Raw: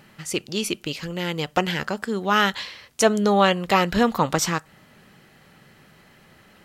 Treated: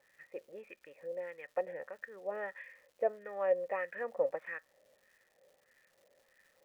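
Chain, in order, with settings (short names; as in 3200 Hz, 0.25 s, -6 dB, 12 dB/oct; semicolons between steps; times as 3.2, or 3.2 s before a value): vocal tract filter e; wah 1.6 Hz 580–1700 Hz, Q 2; crackle 350/s -60 dBFS; gain +2 dB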